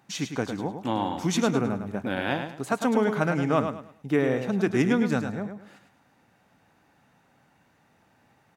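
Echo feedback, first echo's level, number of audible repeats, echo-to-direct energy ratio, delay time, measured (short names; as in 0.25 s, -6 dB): 29%, -7.5 dB, 3, -7.0 dB, 0.105 s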